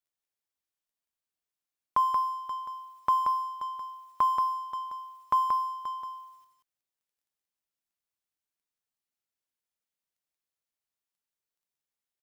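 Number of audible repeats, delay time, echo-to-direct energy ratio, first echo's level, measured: 1, 0.18 s, -4.5 dB, -4.5 dB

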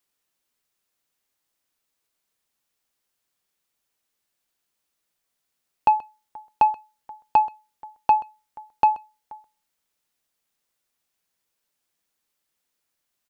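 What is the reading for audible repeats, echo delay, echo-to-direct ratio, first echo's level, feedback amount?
1, 0.13 s, -20.5 dB, -20.5 dB, no steady repeat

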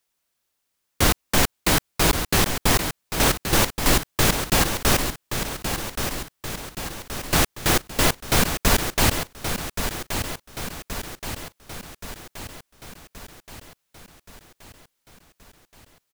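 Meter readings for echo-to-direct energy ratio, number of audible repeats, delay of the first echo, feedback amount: -6.5 dB, 6, 1.125 s, 56%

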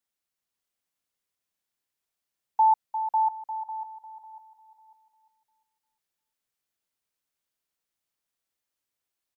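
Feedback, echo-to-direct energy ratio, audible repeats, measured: 29%, -3.5 dB, 3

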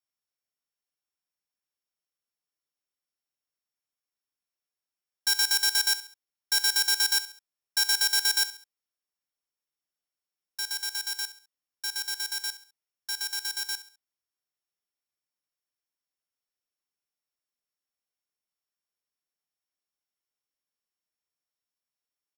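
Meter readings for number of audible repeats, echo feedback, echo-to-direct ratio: 3, 37%, -14.0 dB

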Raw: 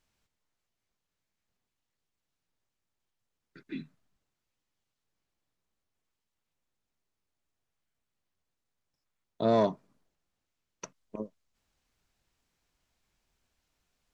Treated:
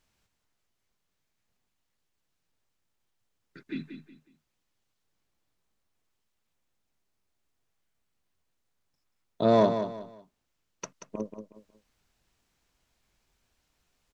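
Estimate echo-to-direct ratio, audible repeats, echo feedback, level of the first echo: -8.5 dB, 3, 30%, -9.0 dB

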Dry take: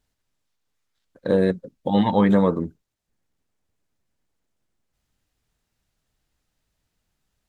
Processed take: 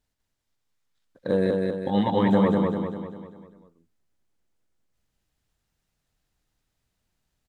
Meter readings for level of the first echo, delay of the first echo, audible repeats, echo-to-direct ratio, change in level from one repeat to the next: -3.0 dB, 0.198 s, 6, -2.0 dB, -6.0 dB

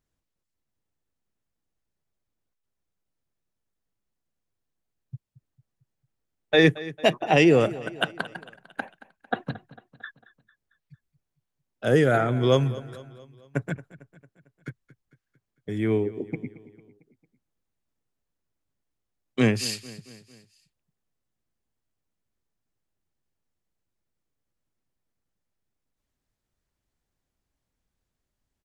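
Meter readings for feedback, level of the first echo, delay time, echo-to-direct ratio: 53%, -18.0 dB, 0.225 s, -16.5 dB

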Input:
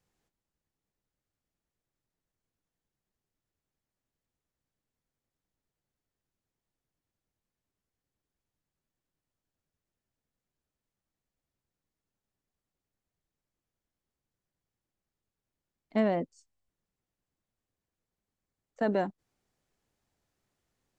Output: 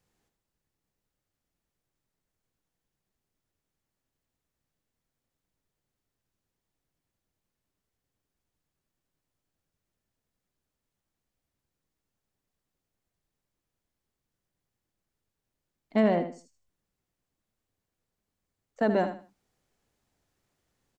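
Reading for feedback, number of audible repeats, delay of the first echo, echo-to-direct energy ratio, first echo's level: 25%, 3, 78 ms, -9.0 dB, -9.5 dB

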